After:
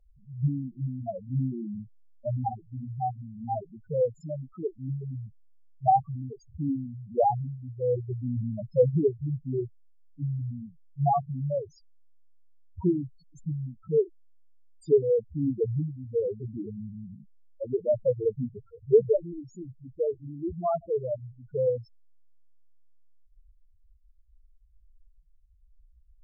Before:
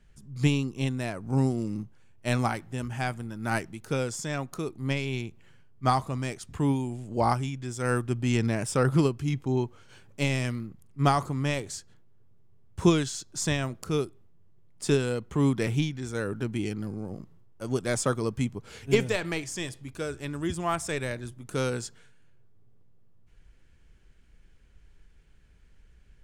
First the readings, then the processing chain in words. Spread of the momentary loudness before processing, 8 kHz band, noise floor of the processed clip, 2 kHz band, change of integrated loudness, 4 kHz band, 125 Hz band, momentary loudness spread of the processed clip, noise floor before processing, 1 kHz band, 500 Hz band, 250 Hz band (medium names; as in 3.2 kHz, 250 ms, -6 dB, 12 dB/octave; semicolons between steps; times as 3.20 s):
11 LU, under -30 dB, -59 dBFS, under -40 dB, -0.5 dB, under -30 dB, -3.0 dB, 16 LU, -56 dBFS, +1.5 dB, +4.0 dB, -5.0 dB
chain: low-pass that closes with the level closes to 1.5 kHz, closed at -23 dBFS; loudest bins only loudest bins 2; high-order bell 590 Hz +10.5 dB 1.1 oct